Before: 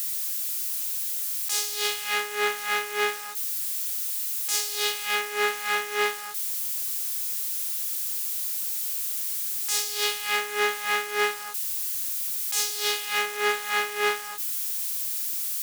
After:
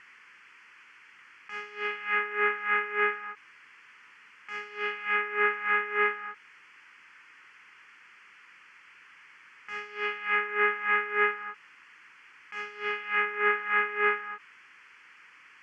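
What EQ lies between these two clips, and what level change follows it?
high-pass filter 47 Hz
low-pass filter 2,600 Hz 24 dB per octave
phaser with its sweep stopped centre 1,600 Hz, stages 4
+2.5 dB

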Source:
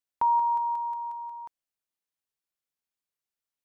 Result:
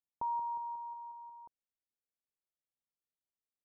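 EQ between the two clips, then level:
Gaussian smoothing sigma 10 samples
−4.5 dB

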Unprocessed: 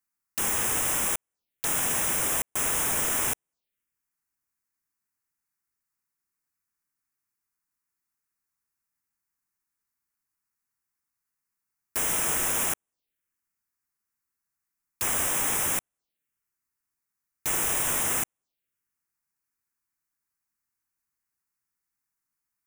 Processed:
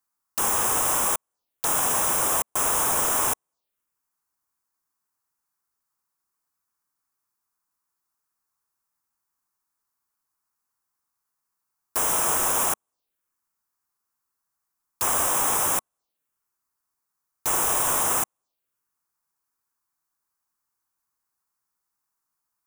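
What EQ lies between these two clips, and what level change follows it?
drawn EQ curve 220 Hz 0 dB, 1,100 Hz +10 dB, 2,000 Hz −3 dB, 4,500 Hz +3 dB
0.0 dB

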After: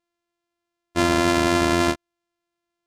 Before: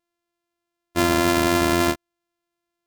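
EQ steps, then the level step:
low-pass filter 8,700 Hz 12 dB per octave
0.0 dB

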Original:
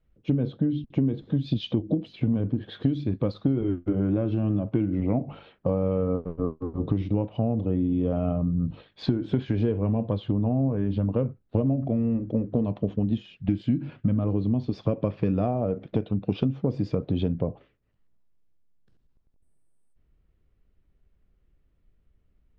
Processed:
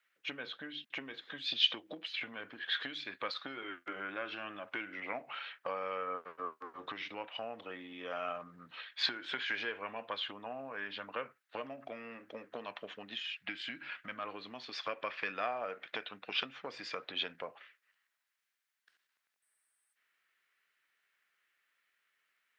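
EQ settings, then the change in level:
high-pass with resonance 1,700 Hz, resonance Q 2.2
+6.5 dB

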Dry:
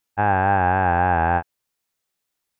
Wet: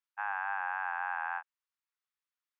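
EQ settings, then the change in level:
Butterworth high-pass 1,000 Hz 36 dB per octave
low-pass filter 1,300 Hz 6 dB per octave
−6.0 dB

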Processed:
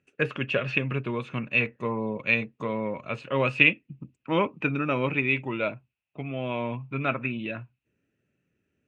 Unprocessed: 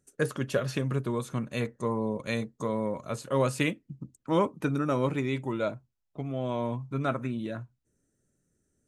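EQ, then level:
high-pass filter 77 Hz
low-pass with resonance 2,600 Hz, resonance Q 9.5
0.0 dB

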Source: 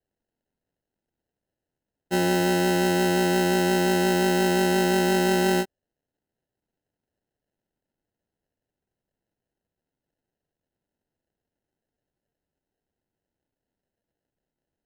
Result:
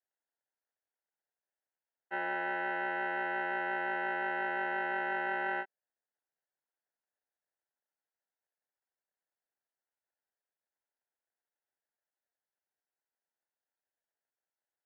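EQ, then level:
high-pass filter 1,100 Hz 12 dB per octave
low-pass filter 2,100 Hz 24 dB per octave
high-frequency loss of the air 280 metres
0.0 dB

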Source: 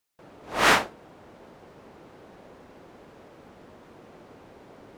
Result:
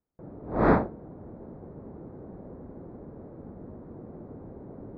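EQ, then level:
moving average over 15 samples
high-frequency loss of the air 180 metres
tilt shelving filter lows +10 dB, about 640 Hz
+2.0 dB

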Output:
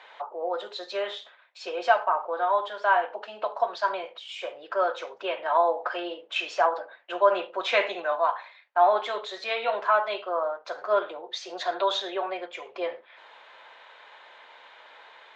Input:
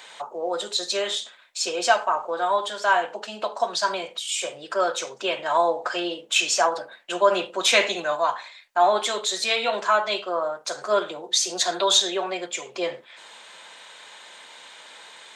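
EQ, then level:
high-pass filter 530 Hz 12 dB per octave
high-frequency loss of the air 100 metres
head-to-tape spacing loss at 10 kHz 30 dB
+2.5 dB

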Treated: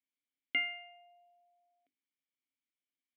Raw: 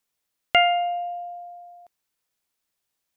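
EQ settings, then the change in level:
formant filter i
bass and treble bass −3 dB, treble −5 dB
mains-hum notches 50/100/150/200/250/300/350/400 Hz
0.0 dB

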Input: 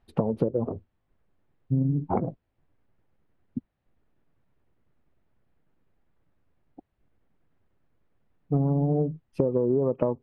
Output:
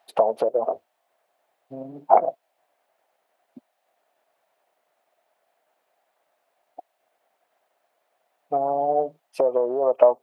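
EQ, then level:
high-pass with resonance 670 Hz, resonance Q 4.9
high-shelf EQ 2,300 Hz +12 dB
+3.0 dB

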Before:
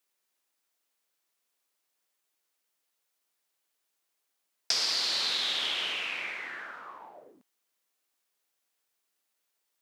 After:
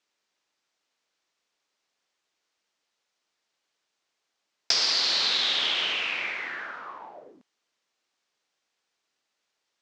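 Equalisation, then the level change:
low-pass filter 6,400 Hz 24 dB per octave
+5.0 dB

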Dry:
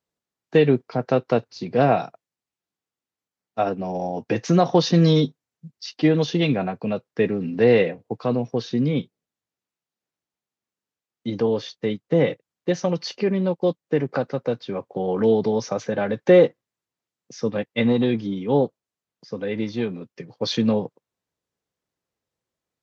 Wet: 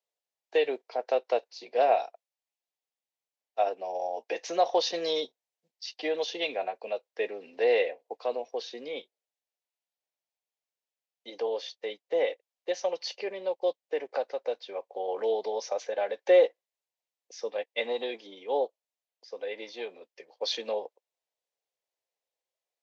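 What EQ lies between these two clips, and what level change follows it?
high-pass filter 570 Hz 24 dB per octave
parametric band 1,300 Hz −14 dB 1 octave
high-shelf EQ 3,900 Hz −8.5 dB
+1.5 dB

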